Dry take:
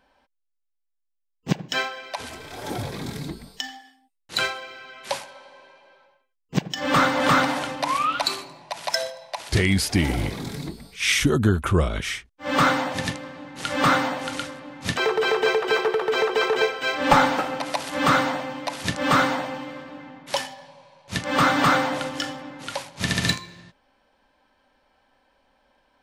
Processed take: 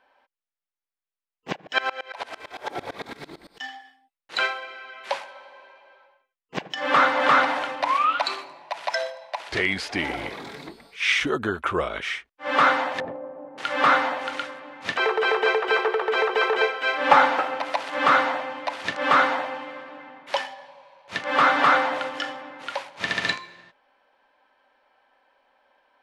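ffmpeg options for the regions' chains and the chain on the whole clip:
ffmpeg -i in.wav -filter_complex "[0:a]asettb=1/sr,asplit=3[link_01][link_02][link_03];[link_01]atrim=end=1.564[link_04];[link_02]atrim=start=1.56:end=3.61,asetpts=PTS-STARTPTS,afade=type=in:duration=0.004:curve=qsin,afade=type=out:start_time=2.046:duration=0.004:curve=qsin,aecho=1:1:69|138|207|276|345:0.447|0.183|0.0751|0.0308|0.0126,atrim=end_sample=90405,acontrast=58,aeval=exprs='val(0)*pow(10,-25*if(lt(mod(-8.9*n/s,1),2*abs(-8.9)/1000),1-mod(-8.9*n/s,1)/(2*abs(-8.9)/1000),(mod(-8.9*n/s,1)-2*abs(-8.9)/1000)/(1-2*abs(-8.9)/1000))/20)':channel_layout=same[link_05];[link_03]atrim=start=3.606[link_06];[link_04][link_05]acrossfade=duration=0.004:curve1=hsin:curve2=qsin[link_07];[link_07][link_06]acrossfade=duration=0.004:curve1=qsin:curve2=hsin,asettb=1/sr,asplit=3[link_08][link_09][link_10];[link_08]atrim=end=13.004[link_11];[link_09]atrim=start=13:end=13.58,asetpts=PTS-STARTPTS,afade=type=in:duration=0.004:curve=qsin,afade=type=out:start_time=0.576:duration=0.004:curve=qsin,lowpass=frequency=590:width_type=q:width=1.8,asoftclip=type=hard:threshold=-21dB[link_12];[link_10]atrim=start=13.576[link_13];[link_11][link_12]acrossfade=duration=0.004:curve1=hsin:curve2=qsin[link_14];[link_14][link_13]acrossfade=duration=0.004:curve1=qsin:curve2=hsin,lowshelf=frequency=330:gain=-9,acrossover=split=8300[link_15][link_16];[link_16]acompressor=threshold=-51dB:ratio=4:attack=1:release=60[link_17];[link_15][link_17]amix=inputs=2:normalize=0,bass=frequency=250:gain=-13,treble=frequency=4000:gain=-14,volume=3dB" out.wav

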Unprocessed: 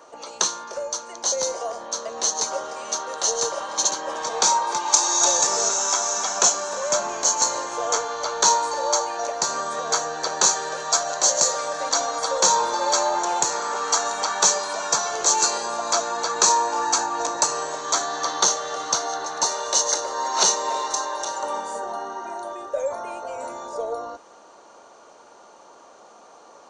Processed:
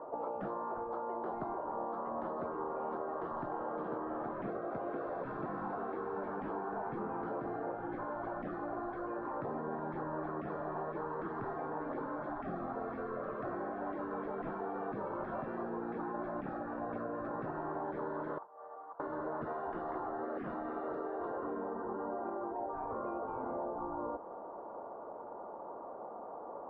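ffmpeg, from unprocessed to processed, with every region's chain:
ffmpeg -i in.wav -filter_complex "[0:a]asettb=1/sr,asplit=3[link_01][link_02][link_03];[link_01]atrim=end=18.384[link_04];[link_02]atrim=start=18.38:end=19,asetpts=PTS-STARTPTS,afade=type=in:duration=0.004:curve=qsin,afade=type=out:start_time=0.616:duration=0.004:curve=qsin,aderivative,acompressor=threshold=-36dB:ratio=3:attack=3.2:release=140:knee=1:detection=peak,lowpass=1300[link_05];[link_03]atrim=start=18.996[link_06];[link_04][link_05]acrossfade=duration=0.004:curve1=hsin:curve2=qsin[link_07];[link_07][link_06]acrossfade=duration=0.004:curve1=qsin:curve2=hsin,afftfilt=real='re*lt(hypot(re,im),0.0891)':imag='im*lt(hypot(re,im),0.0891)':win_size=1024:overlap=0.75,lowpass=frequency=1000:width=0.5412,lowpass=frequency=1000:width=1.3066,acompressor=threshold=-39dB:ratio=6,volume=4.5dB" out.wav

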